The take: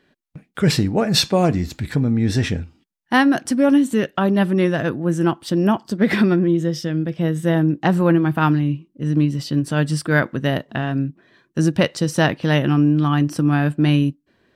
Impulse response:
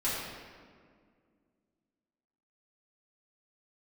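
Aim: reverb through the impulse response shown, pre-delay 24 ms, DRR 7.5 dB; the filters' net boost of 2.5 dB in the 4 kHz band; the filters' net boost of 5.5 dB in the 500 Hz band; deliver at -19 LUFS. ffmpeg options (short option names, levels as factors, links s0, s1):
-filter_complex "[0:a]equalizer=f=500:t=o:g=7,equalizer=f=4000:t=o:g=3,asplit=2[s0][s1];[1:a]atrim=start_sample=2205,adelay=24[s2];[s1][s2]afir=irnorm=-1:irlink=0,volume=0.168[s3];[s0][s3]amix=inputs=2:normalize=0,volume=0.708"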